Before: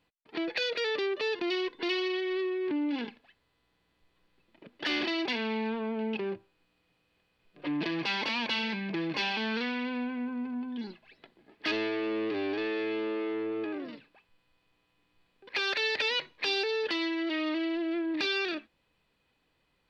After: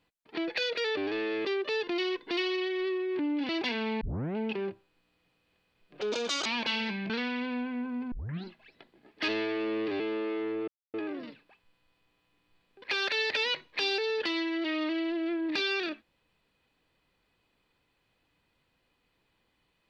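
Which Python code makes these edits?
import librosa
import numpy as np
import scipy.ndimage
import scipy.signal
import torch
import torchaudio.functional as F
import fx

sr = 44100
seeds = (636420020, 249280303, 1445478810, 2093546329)

y = fx.edit(x, sr, fx.cut(start_s=3.01, length_s=2.12),
    fx.tape_start(start_s=5.65, length_s=0.36),
    fx.speed_span(start_s=7.65, length_s=0.64, speed=1.43),
    fx.cut(start_s=8.93, length_s=0.6),
    fx.tape_start(start_s=10.55, length_s=0.33),
    fx.move(start_s=12.43, length_s=0.48, to_s=0.97),
    fx.insert_silence(at_s=13.59, length_s=0.26), tone=tone)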